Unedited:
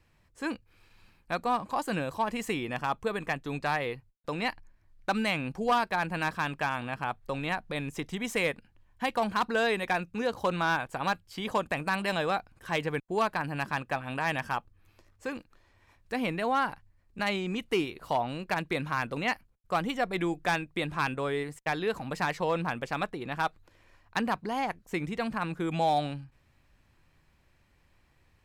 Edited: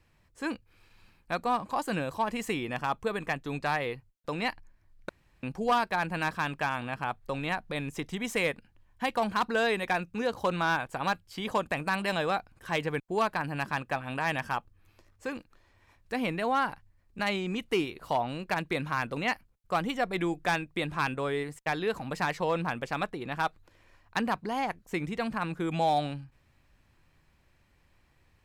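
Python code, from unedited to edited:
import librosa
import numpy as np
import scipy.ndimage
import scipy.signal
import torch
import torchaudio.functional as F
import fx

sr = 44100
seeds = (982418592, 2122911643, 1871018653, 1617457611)

y = fx.edit(x, sr, fx.room_tone_fill(start_s=5.09, length_s=0.34), tone=tone)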